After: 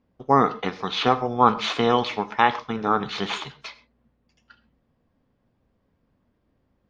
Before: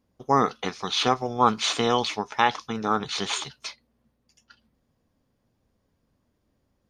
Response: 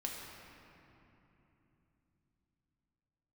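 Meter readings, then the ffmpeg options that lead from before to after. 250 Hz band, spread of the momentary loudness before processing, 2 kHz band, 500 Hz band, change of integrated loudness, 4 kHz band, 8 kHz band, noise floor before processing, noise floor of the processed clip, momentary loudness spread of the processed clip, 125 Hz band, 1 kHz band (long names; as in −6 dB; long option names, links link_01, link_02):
+3.0 dB, 9 LU, +2.0 dB, +3.0 dB, +2.0 dB, −2.0 dB, −11.0 dB, −73 dBFS, −70 dBFS, 11 LU, +3.0 dB, +3.0 dB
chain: -filter_complex "[0:a]lowpass=3000,asplit=2[link_01][link_02];[1:a]atrim=start_sample=2205,atrim=end_sample=6174[link_03];[link_02][link_03]afir=irnorm=-1:irlink=0,volume=-5.5dB[link_04];[link_01][link_04]amix=inputs=2:normalize=0"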